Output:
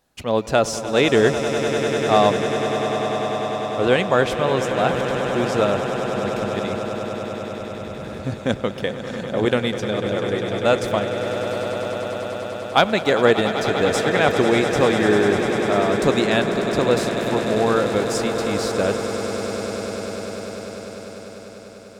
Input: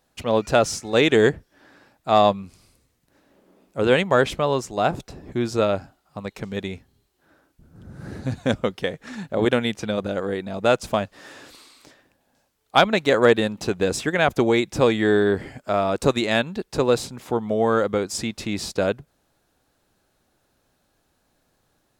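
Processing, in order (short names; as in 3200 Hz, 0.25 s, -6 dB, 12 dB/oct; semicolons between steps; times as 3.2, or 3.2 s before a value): swelling echo 99 ms, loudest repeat 8, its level -12.5 dB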